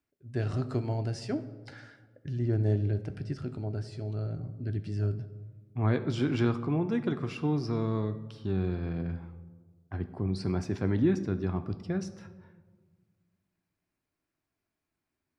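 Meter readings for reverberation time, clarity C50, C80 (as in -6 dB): 1.5 s, 13.5 dB, 15.5 dB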